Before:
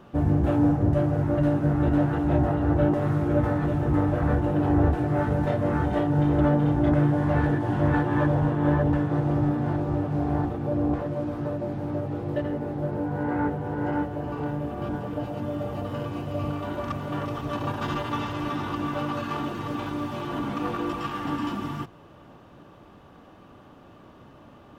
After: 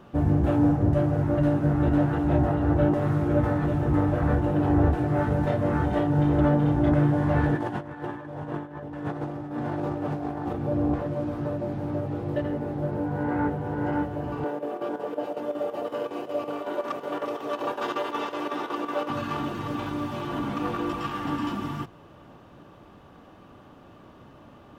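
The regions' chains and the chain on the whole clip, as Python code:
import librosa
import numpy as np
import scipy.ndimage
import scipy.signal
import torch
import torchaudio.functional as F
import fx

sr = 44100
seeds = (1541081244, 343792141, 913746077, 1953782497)

y = fx.chain(x, sr, fx.highpass(hz=270.0, slope=6),
    fx.over_compress(threshold_db=-31.0, ratio=-0.5), at=(7.55, 10.53))
y = fx.chain(y, sr, fx.chopper(hz=5.4, depth_pct=60, duty_pct=80),
    fx.highpass_res(hz=430.0, q=2.0), at=(14.44, 19.1))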